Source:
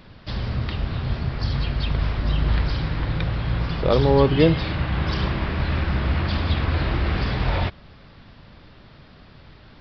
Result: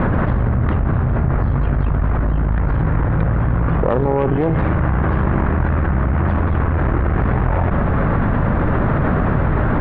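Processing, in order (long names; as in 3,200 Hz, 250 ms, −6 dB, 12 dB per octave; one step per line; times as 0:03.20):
low-pass filter 1,600 Hz 24 dB per octave
harmonic generator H 4 −13 dB, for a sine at −4.5 dBFS
envelope flattener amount 100%
level −4.5 dB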